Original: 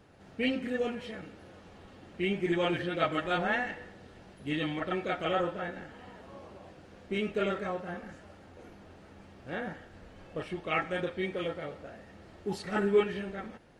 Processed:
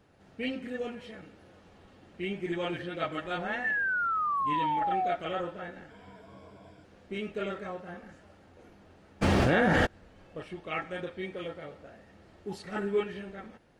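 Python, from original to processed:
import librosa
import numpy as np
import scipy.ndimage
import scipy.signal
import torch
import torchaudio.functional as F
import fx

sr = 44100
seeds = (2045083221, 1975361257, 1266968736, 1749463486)

y = fx.spec_paint(x, sr, seeds[0], shape='fall', start_s=3.64, length_s=1.52, low_hz=680.0, high_hz=1800.0, level_db=-25.0)
y = fx.ripple_eq(y, sr, per_octave=1.7, db=12, at=(5.9, 6.84))
y = fx.env_flatten(y, sr, amount_pct=100, at=(9.21, 9.85), fade=0.02)
y = y * 10.0 ** (-4.0 / 20.0)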